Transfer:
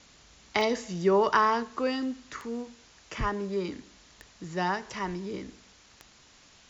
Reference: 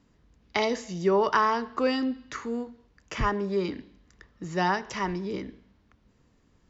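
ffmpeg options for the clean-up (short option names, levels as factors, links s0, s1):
-af "adeclick=t=4,afwtdn=0.0022,asetnsamples=n=441:p=0,asendcmd='1.63 volume volume 3.5dB',volume=1"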